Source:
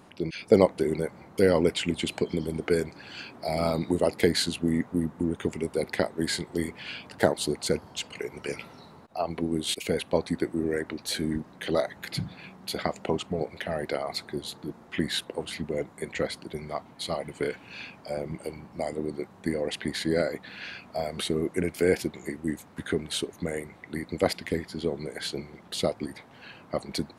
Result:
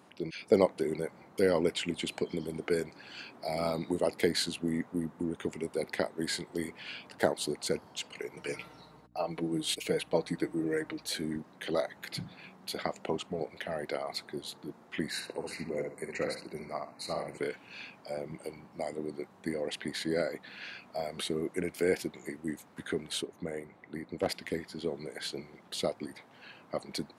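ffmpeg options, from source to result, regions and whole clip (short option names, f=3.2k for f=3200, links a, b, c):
-filter_complex "[0:a]asettb=1/sr,asplit=3[a][b][c];[a]atrim=end=8.364[d];[b]atrim=start=8.36:end=11.07,asetpts=PTS-STARTPTS,afade=t=in:d=0.004:c=qsin,afade=t=out:st=2.706:d=0.004:c=qsin,agate=range=-33dB:threshold=-49dB:ratio=3:release=100:detection=peak,aecho=1:1:6.5:0.63,atrim=end_sample=119511,aeval=exprs='val(0)+0.00282*(sin(2*PI*60*n/s)+sin(2*PI*2*60*n/s)/2+sin(2*PI*3*60*n/s)/3+sin(2*PI*4*60*n/s)/4+sin(2*PI*5*60*n/s)/5)':c=same[e];[c]atrim=start=11.066[f];[d][e]acrossfade=d=0.004:c1=hsin:c2=qsin[g];[g][f]acrossfade=d=0.004:c1=qsin:c2=hsin,asettb=1/sr,asplit=3[h][i][j];[h]atrim=end=15.104[k];[i]atrim=start=15.1:end=17.38,asetpts=PTS-STARTPTS,afade=t=in:d=0.004:c=qsin,afade=t=out:st=2.276:d=0.004:c=qsin,asuperstop=centerf=3300:order=8:qfactor=2.8,asplit=2[l][m];[m]adelay=63,lowpass=f=4.4k:p=1,volume=-4dB,asplit=2[n][o];[o]adelay=63,lowpass=f=4.4k:p=1,volume=0.27,asplit=2[p][q];[q]adelay=63,lowpass=f=4.4k:p=1,volume=0.27,asplit=2[r][s];[s]adelay=63,lowpass=f=4.4k:p=1,volume=0.27[t];[l][n][p][r][t]amix=inputs=5:normalize=0,atrim=end_sample=100548[u];[j]atrim=start=17.376[v];[k][u]acrossfade=d=0.004:c1=hsin:c2=qsin[w];[w][v]acrossfade=d=0.004:c1=qsin:c2=hsin,asettb=1/sr,asplit=3[x][y][z];[x]atrim=end=23.224[aa];[y]atrim=start=23.22:end=24.29,asetpts=PTS-STARTPTS,afade=t=in:d=0.004:c=qsin,afade=t=out:st=1.066:d=0.004:c=qsin,highshelf=f=2.2k:g=-9.5,aeval=exprs='clip(val(0),-1,0.0891)':c=same[ab];[z]atrim=start=24.286[ac];[aa][ab]acrossfade=d=0.004:c1=hsin:c2=qsin[ad];[ad][ac]acrossfade=d=0.004:c1=qsin:c2=hsin,highpass=76,lowshelf=f=120:g=-9.5,volume=-4.5dB"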